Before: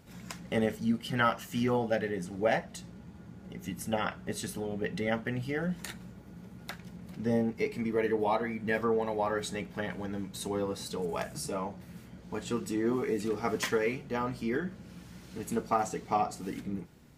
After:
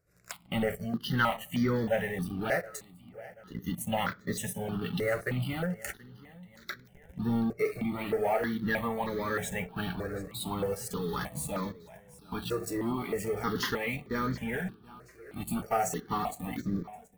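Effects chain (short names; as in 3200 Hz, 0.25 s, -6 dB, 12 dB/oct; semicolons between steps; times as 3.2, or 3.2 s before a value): 3.69–5.53 HPF 86 Hz 24 dB/oct; 15.5–15.97 high shelf 6600 Hz +7 dB; in parallel at -7.5 dB: companded quantiser 2-bit; on the sum: spectral noise reduction 15 dB; feedback echo 0.728 s, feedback 45%, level -20.5 dB; on a send at -23 dB: reverb RT60 0.70 s, pre-delay 7 ms; on the sum: step phaser 3.2 Hz 880–2800 Hz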